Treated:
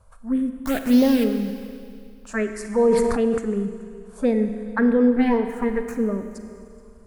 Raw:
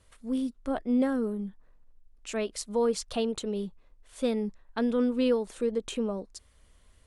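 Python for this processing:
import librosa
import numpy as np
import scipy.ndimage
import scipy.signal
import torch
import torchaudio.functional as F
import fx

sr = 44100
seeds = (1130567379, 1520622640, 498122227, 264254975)

y = fx.lower_of_two(x, sr, delay_ms=4.9, at=(5.16, 5.96))
y = fx.high_shelf_res(y, sr, hz=2400.0, db=-9.0, q=3.0)
y = fx.quant_dither(y, sr, seeds[0], bits=6, dither='none', at=(0.59, 1.24))
y = fx.env_phaser(y, sr, low_hz=320.0, high_hz=1500.0, full_db=-22.0)
y = y + 10.0 ** (-23.0 / 20.0) * np.pad(y, (int(427 * sr / 1000.0), 0))[:len(y)]
y = fx.rev_schroeder(y, sr, rt60_s=2.3, comb_ms=33, drr_db=7.5)
y = fx.sustainer(y, sr, db_per_s=27.0, at=(2.54, 3.38))
y = y * librosa.db_to_amplitude(9.0)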